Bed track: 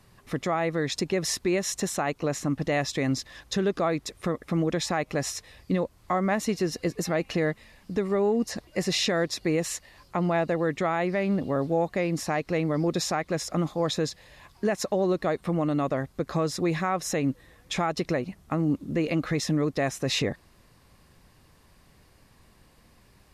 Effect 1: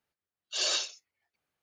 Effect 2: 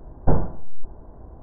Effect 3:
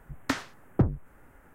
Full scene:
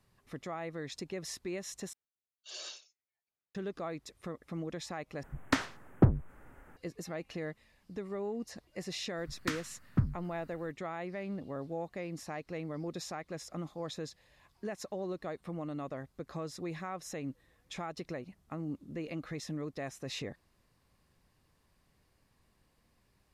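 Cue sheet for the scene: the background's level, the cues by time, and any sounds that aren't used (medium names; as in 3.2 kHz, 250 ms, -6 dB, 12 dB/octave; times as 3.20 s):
bed track -13.5 dB
1.93 s: replace with 1 -15.5 dB
5.23 s: replace with 3 + treble shelf 11 kHz -8.5 dB
9.18 s: add 3 -4.5 dB + high-order bell 530 Hz -13 dB
not used: 2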